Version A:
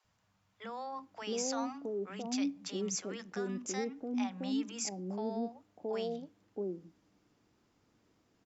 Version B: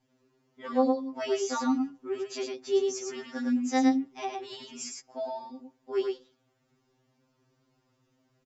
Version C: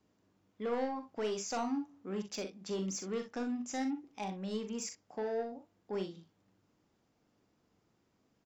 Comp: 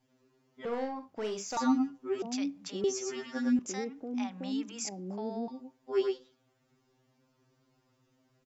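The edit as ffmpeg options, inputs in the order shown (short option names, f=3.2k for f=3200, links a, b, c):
-filter_complex "[0:a]asplit=2[a][b];[1:a]asplit=4[c][d][e][f];[c]atrim=end=0.652[g];[2:a]atrim=start=0.648:end=1.572[h];[d]atrim=start=1.568:end=2.222[i];[a]atrim=start=2.218:end=2.842[j];[e]atrim=start=2.838:end=3.592[k];[b]atrim=start=3.588:end=5.482[l];[f]atrim=start=5.478[m];[g][h]acrossfade=d=0.004:c1=hsin:c2=hsin[n];[n][i]acrossfade=d=0.004:c1=hsin:c2=hsin[o];[o][j]acrossfade=d=0.004:c1=hsin:c2=hsin[p];[p][k]acrossfade=d=0.004:c1=hsin:c2=hsin[q];[q][l]acrossfade=d=0.004:c1=hsin:c2=hsin[r];[r][m]acrossfade=d=0.004:c1=hsin:c2=hsin"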